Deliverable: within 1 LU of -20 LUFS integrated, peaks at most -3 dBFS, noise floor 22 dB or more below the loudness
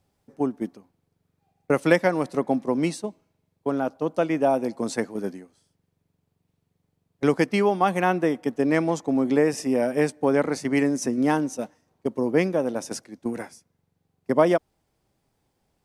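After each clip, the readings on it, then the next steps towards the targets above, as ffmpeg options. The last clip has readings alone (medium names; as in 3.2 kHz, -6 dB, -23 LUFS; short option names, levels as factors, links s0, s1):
loudness -24.0 LUFS; peak level -4.5 dBFS; loudness target -20.0 LUFS
-> -af "volume=1.58,alimiter=limit=0.708:level=0:latency=1"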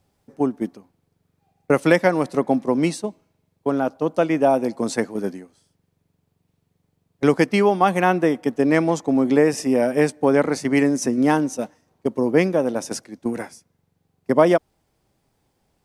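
loudness -20.5 LUFS; peak level -3.0 dBFS; noise floor -73 dBFS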